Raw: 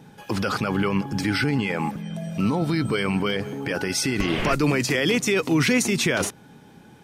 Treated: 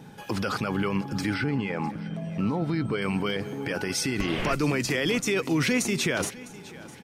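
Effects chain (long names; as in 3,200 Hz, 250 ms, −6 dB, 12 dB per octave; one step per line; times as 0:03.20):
0:01.34–0:03.02: low-pass filter 2,200 Hz 6 dB per octave
in parallel at +1.5 dB: downward compressor, threshold −37 dBFS, peak gain reduction 19 dB
on the sum: repeating echo 655 ms, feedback 44%, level −19 dB
level −5.5 dB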